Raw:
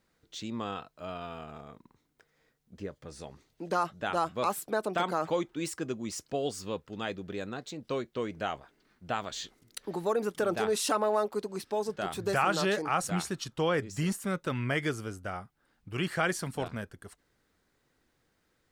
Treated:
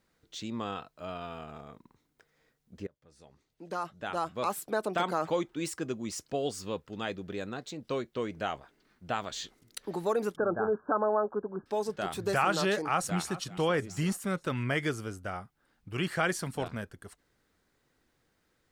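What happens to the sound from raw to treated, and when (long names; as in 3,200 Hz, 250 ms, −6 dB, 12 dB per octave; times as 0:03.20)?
0:02.87–0:04.84: fade in, from −24 dB
0:10.36–0:11.66: linear-phase brick-wall low-pass 1,700 Hz
0:12.88–0:13.32: delay throw 390 ms, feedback 45%, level −15.5 dB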